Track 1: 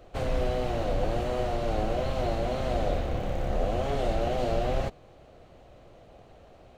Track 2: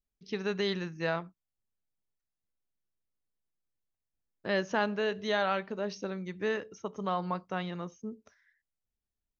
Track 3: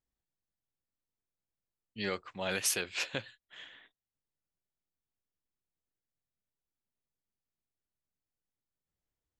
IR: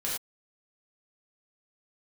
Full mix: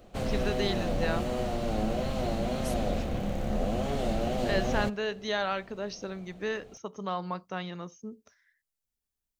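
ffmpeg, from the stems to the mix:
-filter_complex "[0:a]equalizer=frequency=210:width=2.4:gain=11.5,volume=-3.5dB[link_01];[1:a]volume=-1.5dB[link_02];[2:a]volume=-20dB[link_03];[link_01][link_02][link_03]amix=inputs=3:normalize=0,highshelf=frequency=4500:gain=8.5"

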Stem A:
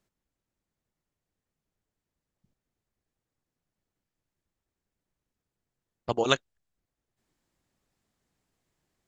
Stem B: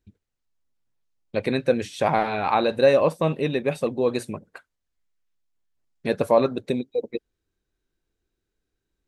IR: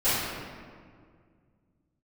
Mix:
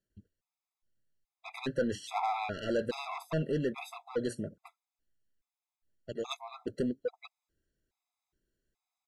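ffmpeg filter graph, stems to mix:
-filter_complex "[0:a]volume=-9dB,asplit=2[link_01][link_02];[1:a]adelay=100,volume=-3.5dB[link_03];[link_02]apad=whole_len=404534[link_04];[link_03][link_04]sidechaincompress=threshold=-51dB:ratio=12:attack=16:release=196[link_05];[link_01][link_05]amix=inputs=2:normalize=0,asoftclip=type=tanh:threshold=-24dB,afftfilt=real='re*gt(sin(2*PI*1.2*pts/sr)*(1-2*mod(floor(b*sr/1024/670),2)),0)':imag='im*gt(sin(2*PI*1.2*pts/sr)*(1-2*mod(floor(b*sr/1024/670),2)),0)':win_size=1024:overlap=0.75"

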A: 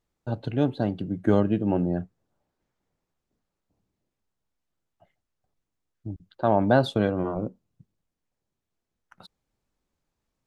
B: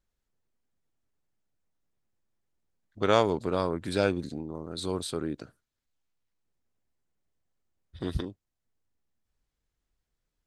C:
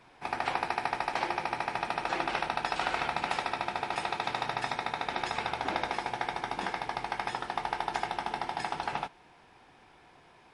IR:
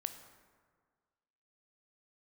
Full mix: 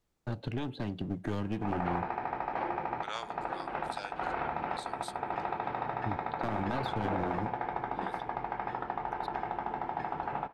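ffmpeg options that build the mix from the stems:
-filter_complex "[0:a]acrossover=split=340|1600|3500[link_01][link_02][link_03][link_04];[link_01]acompressor=threshold=-33dB:ratio=4[link_05];[link_02]acompressor=threshold=-39dB:ratio=4[link_06];[link_03]acompressor=threshold=-44dB:ratio=4[link_07];[link_04]acompressor=threshold=-58dB:ratio=4[link_08];[link_05][link_06][link_07][link_08]amix=inputs=4:normalize=0,aeval=exprs='clip(val(0),-1,0.0141)':channel_layout=same,volume=0dB,asplit=2[link_09][link_10];[link_10]volume=-17.5dB[link_11];[1:a]highpass=1200,volume=-9.5dB,asplit=2[link_12][link_13];[2:a]lowpass=1300,adelay=1400,volume=0.5dB,asplit=2[link_14][link_15];[link_15]volume=-12.5dB[link_16];[link_13]apad=whole_len=526503[link_17];[link_14][link_17]sidechaincompress=threshold=-52dB:ratio=8:attack=9.9:release=156[link_18];[3:a]atrim=start_sample=2205[link_19];[link_11][link_16]amix=inputs=2:normalize=0[link_20];[link_20][link_19]afir=irnorm=-1:irlink=0[link_21];[link_09][link_12][link_18][link_21]amix=inputs=4:normalize=0,alimiter=limit=-21dB:level=0:latency=1:release=30"

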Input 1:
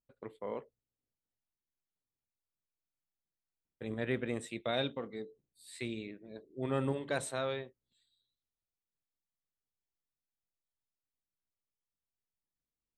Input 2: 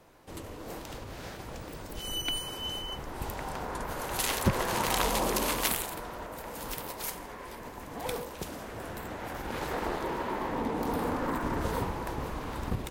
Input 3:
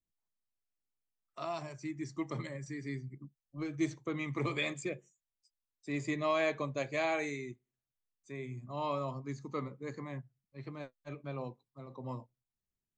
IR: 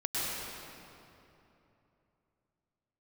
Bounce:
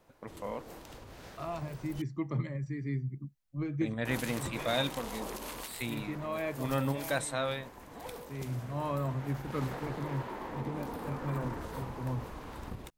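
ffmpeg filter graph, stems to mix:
-filter_complex "[0:a]equalizer=frequency=390:width_type=o:width=0.45:gain=-12,acontrast=57,volume=-2dB,asplit=2[link_01][link_02];[1:a]alimiter=limit=-22dB:level=0:latency=1:release=173,volume=-7.5dB,asplit=3[link_03][link_04][link_05];[link_03]atrim=end=2.02,asetpts=PTS-STARTPTS,afade=type=out:start_time=2.016:duration=0.004:curve=hsin[link_06];[link_04]atrim=start=2.02:end=4.05,asetpts=PTS-STARTPTS,volume=0[link_07];[link_05]atrim=start=4.05,asetpts=PTS-STARTPTS,afade=type=in:duration=0.004:curve=hsin[link_08];[link_06][link_07][link_08]concat=n=3:v=0:a=1[link_09];[2:a]bass=frequency=250:gain=10,treble=frequency=4000:gain=-14,volume=-0.5dB[link_10];[link_02]apad=whole_len=572025[link_11];[link_10][link_11]sidechaincompress=threshold=-39dB:ratio=8:attack=6.8:release=1170[link_12];[link_01][link_09][link_12]amix=inputs=3:normalize=0"

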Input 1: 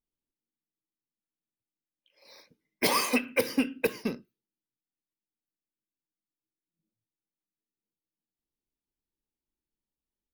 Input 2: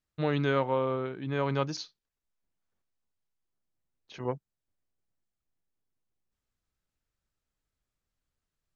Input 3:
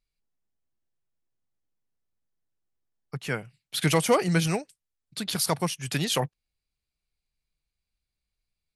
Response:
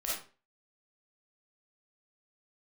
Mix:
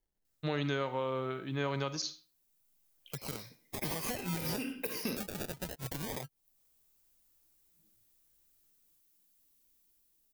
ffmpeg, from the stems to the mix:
-filter_complex "[0:a]dynaudnorm=framelen=250:gausssize=11:maxgain=14dB,alimiter=limit=-13dB:level=0:latency=1:release=55,adelay=1000,volume=-6dB,asplit=2[link_01][link_02];[link_02]volume=-12.5dB[link_03];[1:a]adelay=250,volume=-3.5dB,asplit=2[link_04][link_05];[link_05]volume=-16dB[link_06];[2:a]acrusher=samples=34:mix=1:aa=0.000001:lfo=1:lforange=20.4:lforate=0.25,volume=-2.5dB,asplit=2[link_07][link_08];[link_08]apad=whole_len=499963[link_09];[link_01][link_09]sidechaincompress=threshold=-29dB:ratio=8:attack=16:release=114[link_10];[3:a]atrim=start_sample=2205[link_11];[link_03][link_06]amix=inputs=2:normalize=0[link_12];[link_12][link_11]afir=irnorm=-1:irlink=0[link_13];[link_10][link_04][link_07][link_13]amix=inputs=4:normalize=0,aemphasis=mode=production:type=75kf,acrossover=split=1500|5400[link_14][link_15][link_16];[link_14]acompressor=threshold=-28dB:ratio=4[link_17];[link_15]acompressor=threshold=-37dB:ratio=4[link_18];[link_16]acompressor=threshold=-32dB:ratio=4[link_19];[link_17][link_18][link_19]amix=inputs=3:normalize=0,alimiter=limit=-22.5dB:level=0:latency=1:release=446"

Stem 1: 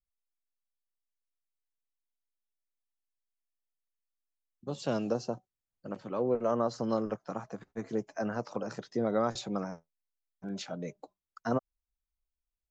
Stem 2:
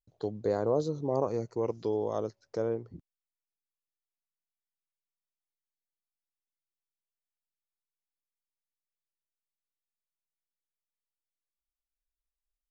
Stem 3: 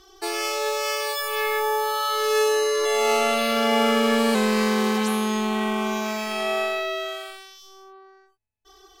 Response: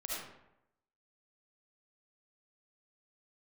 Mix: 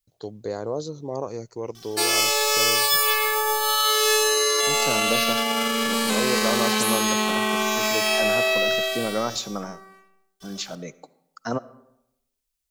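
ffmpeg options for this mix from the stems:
-filter_complex "[0:a]volume=1.5dB,asplit=2[link_01][link_02];[link_02]volume=-18.5dB[link_03];[1:a]volume=-1.5dB[link_04];[2:a]alimiter=limit=-17dB:level=0:latency=1:release=65,aeval=exprs='sgn(val(0))*max(abs(val(0))-0.00106,0)':channel_layout=same,adelay=1750,volume=-0.5dB,asplit=2[link_05][link_06];[link_06]volume=-8.5dB[link_07];[3:a]atrim=start_sample=2205[link_08];[link_03][link_07]amix=inputs=2:normalize=0[link_09];[link_09][link_08]afir=irnorm=-1:irlink=0[link_10];[link_01][link_04][link_05][link_10]amix=inputs=4:normalize=0,highshelf=frequency=2300:gain=11.5"

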